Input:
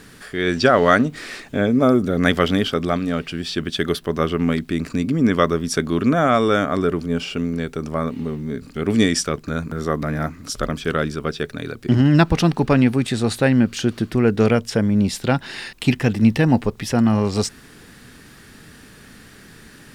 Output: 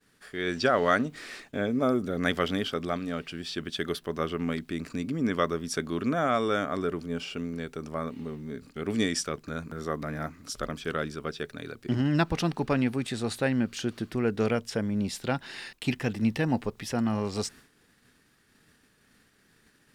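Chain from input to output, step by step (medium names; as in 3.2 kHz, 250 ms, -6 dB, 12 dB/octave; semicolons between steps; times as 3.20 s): expander -36 dBFS; bass shelf 230 Hz -5 dB; trim -8.5 dB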